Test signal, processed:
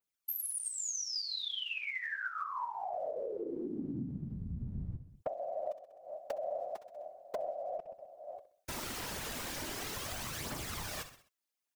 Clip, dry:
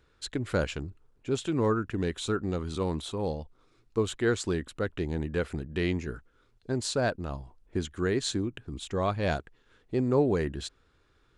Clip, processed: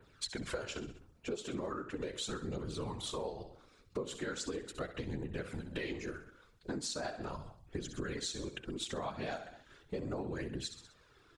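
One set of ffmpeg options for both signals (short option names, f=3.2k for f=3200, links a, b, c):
-filter_complex "[0:a]aphaser=in_gain=1:out_gain=1:delay=4.8:decay=0.53:speed=0.38:type=triangular,lowshelf=f=190:g=-7.5,asplit=2[a][b];[b]aecho=0:1:64|128|192|256:0.224|0.0963|0.0414|0.0178[c];[a][c]amix=inputs=2:normalize=0,adynamicequalizer=threshold=0.00501:dfrequency=5600:dqfactor=1.6:tfrequency=5600:tqfactor=1.6:attack=5:release=100:ratio=0.375:range=3:mode=boostabove:tftype=bell,asplit=2[d][e];[e]alimiter=limit=-23dB:level=0:latency=1:release=124,volume=-3dB[f];[d][f]amix=inputs=2:normalize=0,afftfilt=real='hypot(re,im)*cos(2*PI*random(0))':imag='hypot(re,im)*sin(2*PI*random(1))':win_size=512:overlap=0.75,acompressor=threshold=-41dB:ratio=6,volume=4dB"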